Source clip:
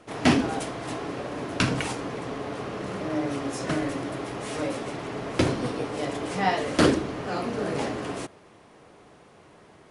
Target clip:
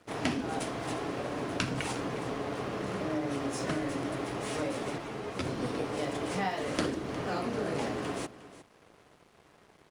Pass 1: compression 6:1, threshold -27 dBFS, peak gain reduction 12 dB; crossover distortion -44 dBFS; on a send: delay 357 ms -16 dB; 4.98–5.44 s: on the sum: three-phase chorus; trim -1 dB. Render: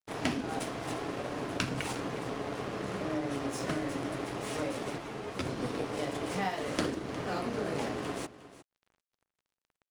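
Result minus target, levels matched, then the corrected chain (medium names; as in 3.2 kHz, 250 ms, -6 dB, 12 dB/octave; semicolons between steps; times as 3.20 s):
crossover distortion: distortion +9 dB
compression 6:1, threshold -27 dBFS, peak gain reduction 12 dB; crossover distortion -54 dBFS; on a send: delay 357 ms -16 dB; 4.98–5.44 s: on the sum: three-phase chorus; trim -1 dB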